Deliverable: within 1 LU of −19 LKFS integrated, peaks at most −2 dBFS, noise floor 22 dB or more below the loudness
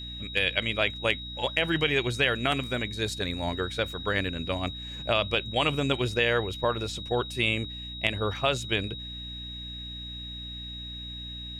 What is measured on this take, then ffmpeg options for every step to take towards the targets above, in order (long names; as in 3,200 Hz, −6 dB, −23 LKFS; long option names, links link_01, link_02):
mains hum 60 Hz; hum harmonics up to 300 Hz; level of the hum −40 dBFS; interfering tone 3,800 Hz; level of the tone −38 dBFS; integrated loudness −28.5 LKFS; sample peak −8.5 dBFS; target loudness −19.0 LKFS
→ -af "bandreject=frequency=60:width_type=h:width=6,bandreject=frequency=120:width_type=h:width=6,bandreject=frequency=180:width_type=h:width=6,bandreject=frequency=240:width_type=h:width=6,bandreject=frequency=300:width_type=h:width=6"
-af "bandreject=frequency=3800:width=30"
-af "volume=9.5dB,alimiter=limit=-2dB:level=0:latency=1"